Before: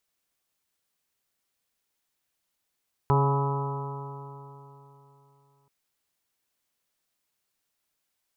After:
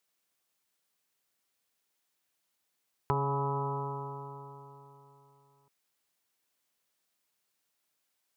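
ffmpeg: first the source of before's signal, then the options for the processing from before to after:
-f lavfi -i "aevalsrc='0.1*pow(10,-3*t/3.27)*sin(2*PI*138.06*t)+0.0188*pow(10,-3*t/3.27)*sin(2*PI*276.51*t)+0.0531*pow(10,-3*t/3.27)*sin(2*PI*415.71*t)+0.015*pow(10,-3*t/3.27)*sin(2*PI*556.05*t)+0.0126*pow(10,-3*t/3.27)*sin(2*PI*697.89*t)+0.0398*pow(10,-3*t/3.27)*sin(2*PI*841.6*t)+0.0596*pow(10,-3*t/3.27)*sin(2*PI*987.53*t)+0.0141*pow(10,-3*t/3.27)*sin(2*PI*1136.04*t)+0.0224*pow(10,-3*t/3.27)*sin(2*PI*1287.45*t)':duration=2.58:sample_rate=44100"
-af "highpass=frequency=150:poles=1,acompressor=threshold=-27dB:ratio=6"

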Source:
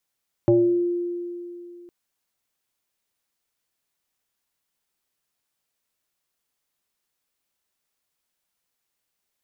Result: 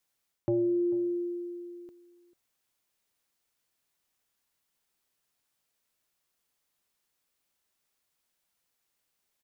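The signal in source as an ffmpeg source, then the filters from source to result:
-f lavfi -i "aevalsrc='0.237*pow(10,-3*t/2.8)*sin(2*PI*349*t+0.97*pow(10,-3*t/0.62)*sin(2*PI*0.66*349*t))':duration=1.41:sample_rate=44100"
-filter_complex "[0:a]areverse,acompressor=threshold=-26dB:ratio=6,areverse,asplit=2[link_01][link_02];[link_02]adelay=443.1,volume=-18dB,highshelf=frequency=4000:gain=-9.97[link_03];[link_01][link_03]amix=inputs=2:normalize=0"

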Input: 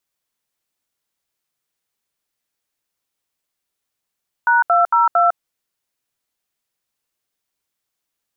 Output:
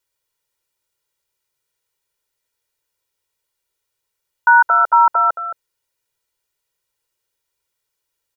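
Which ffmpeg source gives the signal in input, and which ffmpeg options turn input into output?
-f lavfi -i "aevalsrc='0.211*clip(min(mod(t,0.227),0.154-mod(t,0.227))/0.002,0,1)*(eq(floor(t/0.227),0)*(sin(2*PI*941*mod(t,0.227))+sin(2*PI*1477*mod(t,0.227)))+eq(floor(t/0.227),1)*(sin(2*PI*697*mod(t,0.227))+sin(2*PI*1336*mod(t,0.227)))+eq(floor(t/0.227),2)*(sin(2*PI*941*mod(t,0.227))+sin(2*PI*1336*mod(t,0.227)))+eq(floor(t/0.227),3)*(sin(2*PI*697*mod(t,0.227))+sin(2*PI*1336*mod(t,0.227))))':duration=0.908:sample_rate=44100"
-filter_complex "[0:a]aecho=1:1:2.1:0.77,asplit=2[link_01][link_02];[link_02]aecho=0:1:220:0.266[link_03];[link_01][link_03]amix=inputs=2:normalize=0"

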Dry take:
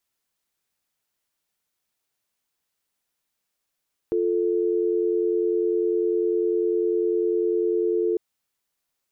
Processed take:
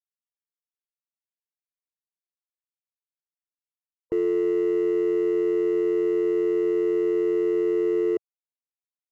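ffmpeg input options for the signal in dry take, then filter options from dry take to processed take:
-f lavfi -i "aevalsrc='0.075*(sin(2*PI*350*t)+sin(2*PI*440*t))':duration=4.05:sample_rate=44100"
-filter_complex "[0:a]afftfilt=real='re*gte(hypot(re,im),0.0141)':imag='im*gte(hypot(re,im),0.0141)':win_size=1024:overlap=0.75,asplit=2[link_01][link_02];[link_02]aeval=exprs='0.0355*(abs(mod(val(0)/0.0355+3,4)-2)-1)':channel_layout=same,volume=-11.5dB[link_03];[link_01][link_03]amix=inputs=2:normalize=0"

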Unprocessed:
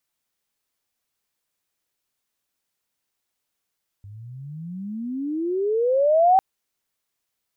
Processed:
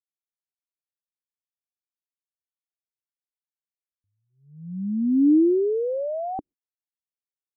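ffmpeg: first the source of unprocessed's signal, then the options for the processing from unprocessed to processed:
-f lavfi -i "aevalsrc='pow(10,(-11.5+26.5*(t/2.35-1))/20)*sin(2*PI*97.6*2.35/(36*log(2)/12)*(exp(36*log(2)/12*t/2.35)-1))':duration=2.35:sample_rate=44100"
-af "agate=range=-38dB:threshold=-34dB:ratio=16:detection=peak,lowpass=frequency=300:width_type=q:width=3.7"

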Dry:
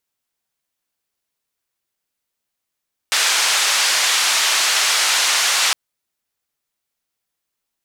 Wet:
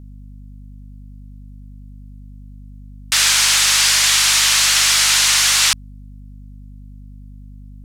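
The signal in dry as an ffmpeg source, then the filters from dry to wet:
-f lavfi -i "anoisesrc=color=white:duration=2.61:sample_rate=44100:seed=1,highpass=frequency=940,lowpass=frequency=6400,volume=-6.3dB"
-filter_complex "[0:a]acrossover=split=960[link_01][link_02];[link_01]asoftclip=type=tanh:threshold=-39.5dB[link_03];[link_02]equalizer=frequency=8500:width_type=o:width=2.4:gain=4.5[link_04];[link_03][link_04]amix=inputs=2:normalize=0,aeval=exprs='val(0)+0.0158*(sin(2*PI*50*n/s)+sin(2*PI*2*50*n/s)/2+sin(2*PI*3*50*n/s)/3+sin(2*PI*4*50*n/s)/4+sin(2*PI*5*50*n/s)/5)':channel_layout=same"

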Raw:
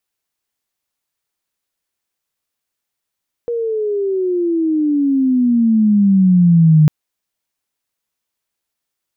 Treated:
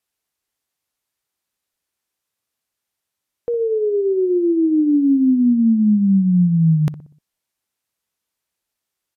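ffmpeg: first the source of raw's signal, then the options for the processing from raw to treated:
-f lavfi -i "aevalsrc='pow(10,(-5.5+11.5*(t/3.4-1))/20)*sin(2*PI*478*3.4/(-20*log(2)/12)*(exp(-20*log(2)/12*t/3.4)-1))':duration=3.4:sample_rate=44100"
-filter_complex "[0:a]alimiter=limit=-11.5dB:level=0:latency=1:release=13,asplit=2[link_01][link_02];[link_02]adelay=61,lowpass=frequency=940:poles=1,volume=-13dB,asplit=2[link_03][link_04];[link_04]adelay=61,lowpass=frequency=940:poles=1,volume=0.48,asplit=2[link_05][link_06];[link_06]adelay=61,lowpass=frequency=940:poles=1,volume=0.48,asplit=2[link_07][link_08];[link_08]adelay=61,lowpass=frequency=940:poles=1,volume=0.48,asplit=2[link_09][link_10];[link_10]adelay=61,lowpass=frequency=940:poles=1,volume=0.48[link_11];[link_01][link_03][link_05][link_07][link_09][link_11]amix=inputs=6:normalize=0" -ar 32000 -c:a libvorbis -b:a 96k

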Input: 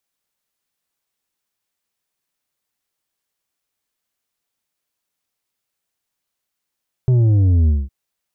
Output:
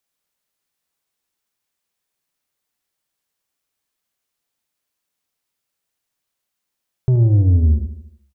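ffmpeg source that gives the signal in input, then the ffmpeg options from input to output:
-f lavfi -i "aevalsrc='0.266*clip((0.81-t)/0.21,0,1)*tanh(2.11*sin(2*PI*130*0.81/log(65/130)*(exp(log(65/130)*t/0.81)-1)))/tanh(2.11)':duration=0.81:sample_rate=44100"
-af "aecho=1:1:76|152|228|304|380|456:0.299|0.161|0.0871|0.047|0.0254|0.0137"

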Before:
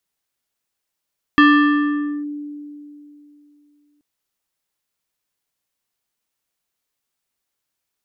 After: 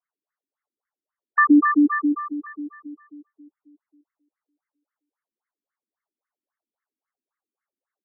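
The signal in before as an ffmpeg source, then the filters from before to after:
-f lavfi -i "aevalsrc='0.473*pow(10,-3*t/2.97)*sin(2*PI*293*t+1.1*clip(1-t/0.87,0,1)*sin(2*PI*5.04*293*t))':duration=2.63:sample_rate=44100"
-filter_complex "[0:a]asplit=2[link_01][link_02];[link_02]aecho=0:1:120|276|478.8|742.4|1085:0.631|0.398|0.251|0.158|0.1[link_03];[link_01][link_03]amix=inputs=2:normalize=0,afftfilt=real='re*between(b*sr/1024,250*pow(1600/250,0.5+0.5*sin(2*PI*3.7*pts/sr))/1.41,250*pow(1600/250,0.5+0.5*sin(2*PI*3.7*pts/sr))*1.41)':imag='im*between(b*sr/1024,250*pow(1600/250,0.5+0.5*sin(2*PI*3.7*pts/sr))/1.41,250*pow(1600/250,0.5+0.5*sin(2*PI*3.7*pts/sr))*1.41)':win_size=1024:overlap=0.75"

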